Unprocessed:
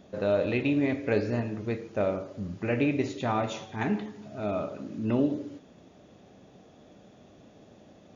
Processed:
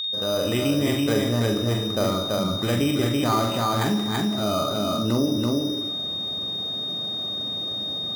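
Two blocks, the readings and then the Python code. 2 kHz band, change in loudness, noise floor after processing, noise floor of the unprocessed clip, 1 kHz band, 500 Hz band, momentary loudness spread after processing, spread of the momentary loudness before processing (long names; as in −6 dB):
+3.0 dB, +6.0 dB, −29 dBFS, −55 dBFS, +8.5 dB, +4.0 dB, 4 LU, 10 LU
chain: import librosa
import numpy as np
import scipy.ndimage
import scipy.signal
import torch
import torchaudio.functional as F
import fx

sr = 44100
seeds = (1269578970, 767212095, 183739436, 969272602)

p1 = fx.fade_in_head(x, sr, length_s=0.6)
p2 = scipy.signal.sosfilt(scipy.signal.butter(2, 76.0, 'highpass', fs=sr, output='sos'), p1)
p3 = fx.low_shelf(p2, sr, hz=150.0, db=4.5)
p4 = np.repeat(scipy.signal.resample_poly(p3, 1, 8), 8)[:len(p3)]
p5 = p4 + 10.0 ** (-36.0 / 20.0) * np.sin(2.0 * np.pi * 3700.0 * np.arange(len(p4)) / sr)
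p6 = fx.peak_eq(p5, sr, hz=1200.0, db=11.5, octaves=0.23)
p7 = fx.doubler(p6, sr, ms=43.0, db=-7)
p8 = p7 + fx.echo_single(p7, sr, ms=332, db=-3.5, dry=0)
y = fx.env_flatten(p8, sr, amount_pct=50)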